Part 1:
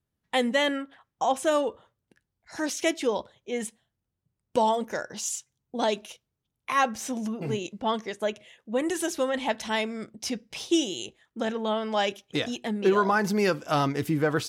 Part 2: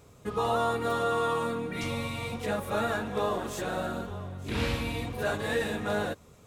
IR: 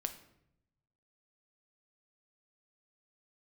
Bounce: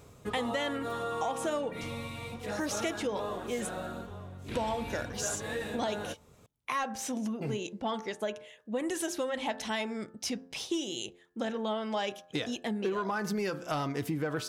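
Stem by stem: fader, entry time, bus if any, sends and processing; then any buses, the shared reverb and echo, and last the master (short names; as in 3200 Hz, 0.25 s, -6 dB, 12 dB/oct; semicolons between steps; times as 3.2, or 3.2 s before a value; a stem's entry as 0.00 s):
-1.5 dB, 0.00 s, no send, de-hum 87.87 Hz, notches 20
+2.0 dB, 0.00 s, no send, auto duck -8 dB, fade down 0.60 s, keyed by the first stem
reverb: off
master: soft clip -14.5 dBFS, distortion -24 dB; compressor 6:1, threshold -29 dBFS, peak gain reduction 9 dB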